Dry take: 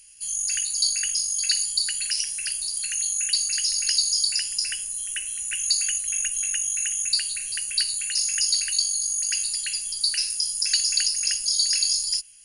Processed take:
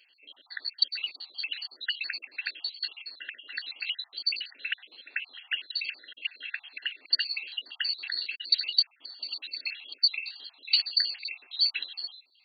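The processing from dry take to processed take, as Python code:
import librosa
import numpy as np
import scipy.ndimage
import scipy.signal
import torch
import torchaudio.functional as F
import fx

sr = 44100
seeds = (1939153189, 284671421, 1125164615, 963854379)

y = fx.spec_dropout(x, sr, seeds[0], share_pct=58)
y = fx.brickwall_bandpass(y, sr, low_hz=240.0, high_hz=4600.0)
y = F.gain(torch.from_numpy(y), 4.0).numpy()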